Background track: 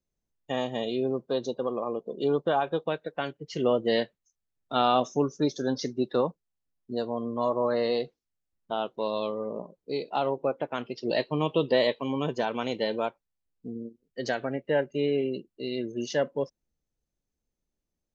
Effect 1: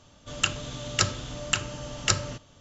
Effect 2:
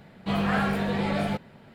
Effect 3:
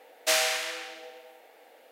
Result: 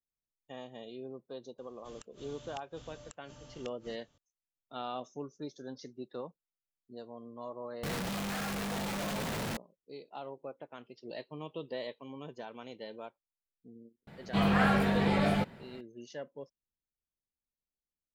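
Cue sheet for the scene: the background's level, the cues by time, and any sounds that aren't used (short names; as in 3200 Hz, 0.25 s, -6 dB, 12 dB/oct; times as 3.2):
background track -16 dB
1.58 add 1 -15.5 dB + flipped gate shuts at -20 dBFS, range -33 dB
7.83 add 2 -8 dB + infinite clipping
14.07 add 2 -1 dB
not used: 3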